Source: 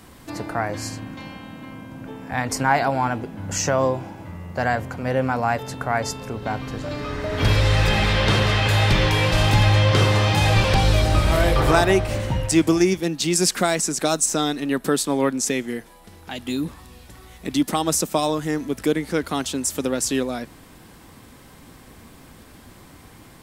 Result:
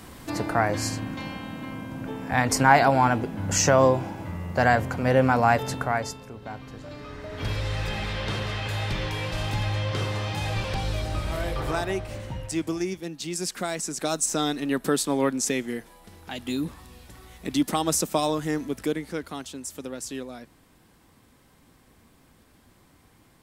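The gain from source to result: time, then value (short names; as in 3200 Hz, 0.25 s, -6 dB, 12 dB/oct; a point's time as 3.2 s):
5.72 s +2 dB
6.28 s -11 dB
13.47 s -11 dB
14.48 s -3 dB
18.57 s -3 dB
19.48 s -12 dB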